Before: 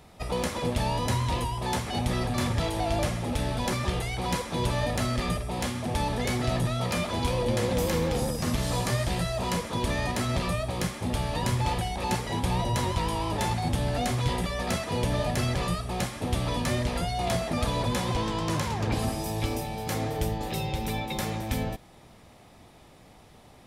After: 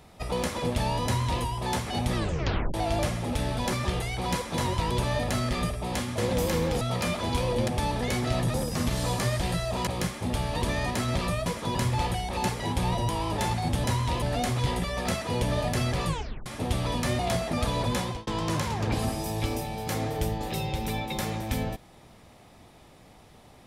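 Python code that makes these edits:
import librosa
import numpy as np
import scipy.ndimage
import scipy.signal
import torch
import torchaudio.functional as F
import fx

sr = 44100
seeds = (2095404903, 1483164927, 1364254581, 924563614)

y = fx.edit(x, sr, fx.duplicate(start_s=1.05, length_s=0.38, to_s=13.84),
    fx.tape_stop(start_s=2.15, length_s=0.59),
    fx.swap(start_s=5.85, length_s=0.86, other_s=7.58, other_length_s=0.63),
    fx.swap(start_s=9.54, length_s=0.29, other_s=10.67, other_length_s=0.75),
    fx.move(start_s=12.76, length_s=0.33, to_s=4.58),
    fx.tape_stop(start_s=15.69, length_s=0.39),
    fx.cut(start_s=16.81, length_s=0.38),
    fx.fade_out_span(start_s=18.0, length_s=0.27), tone=tone)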